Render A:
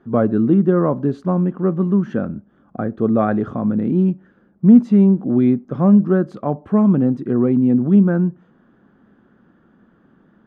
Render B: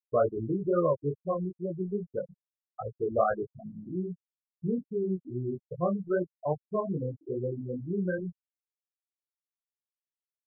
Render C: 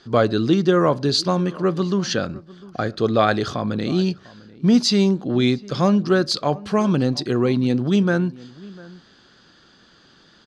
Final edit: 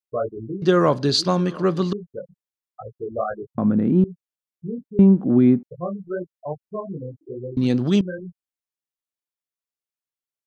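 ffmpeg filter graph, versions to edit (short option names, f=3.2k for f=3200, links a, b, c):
-filter_complex "[2:a]asplit=2[a][b];[0:a]asplit=2[c][d];[1:a]asplit=5[e][f][g][h][i];[e]atrim=end=0.622[j];[a]atrim=start=0.618:end=1.932[k];[f]atrim=start=1.928:end=3.582[l];[c]atrim=start=3.578:end=4.042[m];[g]atrim=start=4.038:end=4.992[n];[d]atrim=start=4.988:end=5.632[o];[h]atrim=start=5.628:end=7.572[p];[b]atrim=start=7.568:end=8.012[q];[i]atrim=start=8.008[r];[j][k]acrossfade=d=0.004:c1=hsin:c2=hsin[s];[s][l]acrossfade=d=0.004:c1=hsin:c2=hsin[t];[t][m]acrossfade=d=0.004:c1=hsin:c2=hsin[u];[u][n]acrossfade=d=0.004:c1=hsin:c2=hsin[v];[v][o]acrossfade=d=0.004:c1=hsin:c2=hsin[w];[w][p]acrossfade=d=0.004:c1=hsin:c2=hsin[x];[x][q]acrossfade=d=0.004:c1=hsin:c2=hsin[y];[y][r]acrossfade=d=0.004:c1=hsin:c2=hsin"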